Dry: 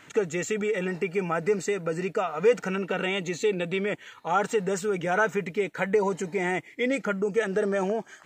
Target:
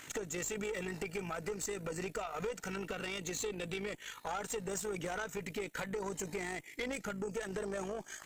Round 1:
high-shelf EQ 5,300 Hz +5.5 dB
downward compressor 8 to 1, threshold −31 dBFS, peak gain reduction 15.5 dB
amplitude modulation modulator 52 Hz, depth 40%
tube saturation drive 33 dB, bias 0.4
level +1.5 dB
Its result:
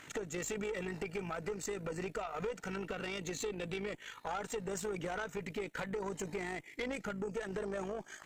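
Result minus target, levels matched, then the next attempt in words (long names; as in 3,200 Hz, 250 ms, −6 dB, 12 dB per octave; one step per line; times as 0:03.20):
8,000 Hz band −3.5 dB
high-shelf EQ 5,300 Hz +17 dB
downward compressor 8 to 1, threshold −31 dBFS, peak gain reduction 15.5 dB
amplitude modulation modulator 52 Hz, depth 40%
tube saturation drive 33 dB, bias 0.4
level +1.5 dB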